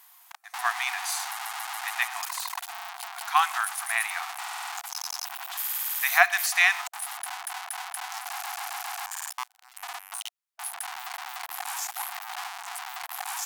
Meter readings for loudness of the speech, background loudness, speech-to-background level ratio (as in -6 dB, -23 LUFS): -26.0 LUFS, -34.0 LUFS, 8.0 dB